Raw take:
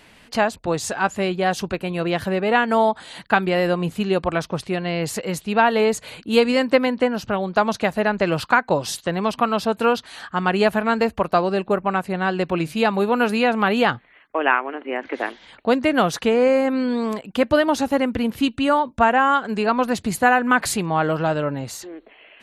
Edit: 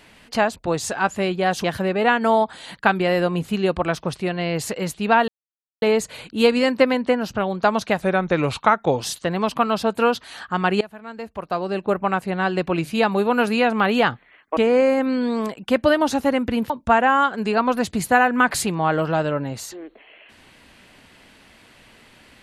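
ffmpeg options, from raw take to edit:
-filter_complex "[0:a]asplit=8[s0][s1][s2][s3][s4][s5][s6][s7];[s0]atrim=end=1.642[s8];[s1]atrim=start=2.108:end=5.75,asetpts=PTS-STARTPTS,afade=t=out:st=3.638:d=0.004:c=hsin,apad=pad_dur=0.54[s9];[s2]atrim=start=5.75:end=7.954,asetpts=PTS-STARTPTS,afade=t=in:d=0.004:c=hsin[s10];[s3]atrim=start=7.95:end=8.83,asetpts=PTS-STARTPTS,asetrate=39249,aresample=44100,atrim=end_sample=43604,asetpts=PTS-STARTPTS[s11];[s4]atrim=start=8.826:end=10.63,asetpts=PTS-STARTPTS,afade=t=out:st=1.8:d=0.004:c=hsin:silence=0.1[s12];[s5]atrim=start=10.63:end=14.392,asetpts=PTS-STARTPTS,afade=t=in:d=1.14:c=qua:silence=0.1[s13];[s6]atrim=start=16.238:end=18.372[s14];[s7]atrim=start=18.808[s15];[s9][s10]concat=n=2:v=0:a=1[s16];[s8][s16]acrossfade=d=0.004:c1=hsin:c2=hsin[s17];[s17][s11]acrossfade=d=0.004:c1=hsin:c2=hsin[s18];[s12][s13]concat=n=2:v=0:a=1[s19];[s18][s19]acrossfade=d=0.004:c1=hsin:c2=hsin[s20];[s20][s14]acrossfade=d=0.004:c1=hsin:c2=hsin[s21];[s21][s15]acrossfade=d=0.004:c1=hsin:c2=hsin"

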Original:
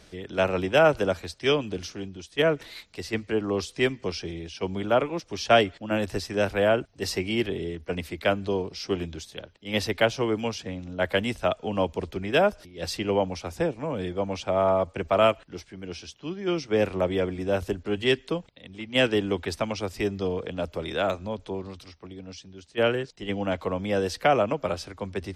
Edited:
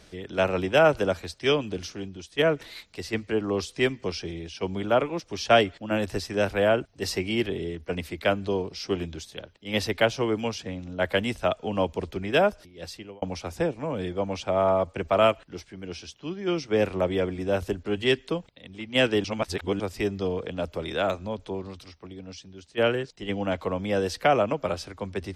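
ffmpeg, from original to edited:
-filter_complex "[0:a]asplit=4[s0][s1][s2][s3];[s0]atrim=end=13.22,asetpts=PTS-STARTPTS,afade=t=out:st=12.43:d=0.79[s4];[s1]atrim=start=13.22:end=19.242,asetpts=PTS-STARTPTS,afade=t=in:d=0.004:c=hsin[s5];[s2]atrim=start=19.238:end=19.802,asetpts=PTS-STARTPTS,areverse[s6];[s3]atrim=start=19.798[s7];[s4][s5]concat=n=2:v=0:a=1[s8];[s8][s6]acrossfade=d=0.004:c1=hsin:c2=hsin[s9];[s9][s7]acrossfade=d=0.004:c1=hsin:c2=hsin"

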